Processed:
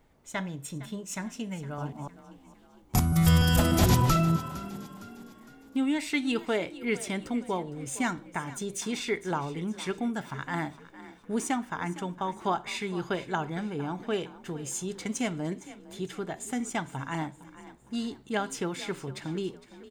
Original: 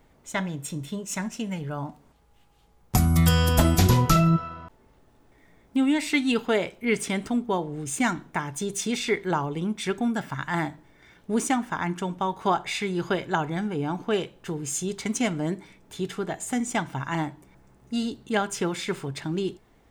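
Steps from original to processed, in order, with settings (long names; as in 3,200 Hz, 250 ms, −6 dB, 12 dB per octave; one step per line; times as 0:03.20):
0:01.63–0:04.10: delay that plays each chunk backwards 149 ms, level −1 dB
echo with shifted repeats 459 ms, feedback 45%, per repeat +35 Hz, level −16.5 dB
level −5 dB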